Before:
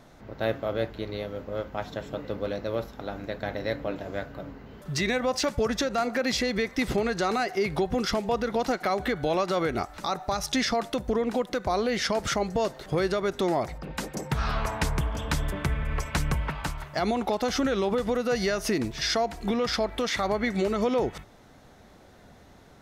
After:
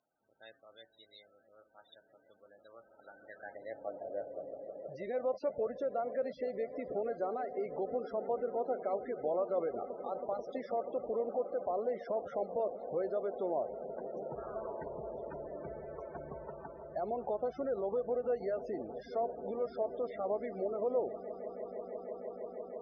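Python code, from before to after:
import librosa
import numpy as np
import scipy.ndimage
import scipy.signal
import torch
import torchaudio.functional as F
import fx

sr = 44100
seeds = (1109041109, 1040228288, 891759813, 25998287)

y = fx.echo_swell(x, sr, ms=162, loudest=8, wet_db=-17.5)
y = fx.spec_topn(y, sr, count=32)
y = fx.filter_sweep_bandpass(y, sr, from_hz=4200.0, to_hz=560.0, start_s=2.44, end_s=4.16, q=2.4)
y = y * librosa.db_to_amplitude(-4.5)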